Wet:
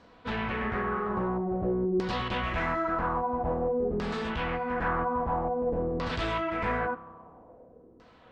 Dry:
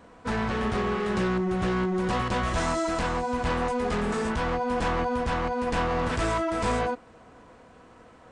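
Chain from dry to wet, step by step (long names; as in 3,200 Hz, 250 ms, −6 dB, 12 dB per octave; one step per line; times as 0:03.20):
spring reverb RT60 2 s, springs 30 ms, chirp 70 ms, DRR 14.5 dB
auto-filter low-pass saw down 0.5 Hz 360–4,900 Hz
level −5 dB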